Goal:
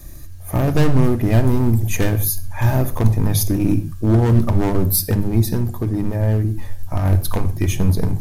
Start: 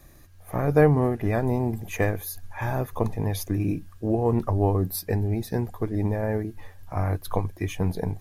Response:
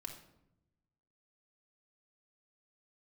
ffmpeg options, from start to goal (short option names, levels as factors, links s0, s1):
-filter_complex "[0:a]asoftclip=type=hard:threshold=0.0841,bandreject=f=50:t=h:w=6,bandreject=f=100:t=h:w=6,bandreject=f=150:t=h:w=6,asettb=1/sr,asplit=3[s0][s1][s2];[s0]atrim=end=5.534[s3];[s1]atrim=start=5.53:end=7.05,asetpts=PTS-STARTPTS,afade=t=in:d=0.004:c=qsin,afade=t=out:st=1.516:d=0.004:c=qsin,acompressor=threshold=0.0398:ratio=4[s4];[s2]atrim=start=7.046[s5];[s3][s4]acrossfade=d=0.004:c1=hsin:c2=qsin[s6];[s6][s5]acrossfade=d=0.004:c1=qsin:c2=hsin,bass=f=250:g=10,treble=f=4000:g=9,asplit=2[s7][s8];[1:a]atrim=start_sample=2205,atrim=end_sample=6615[s9];[s8][s9]afir=irnorm=-1:irlink=0,volume=1.41[s10];[s7][s10]amix=inputs=2:normalize=0"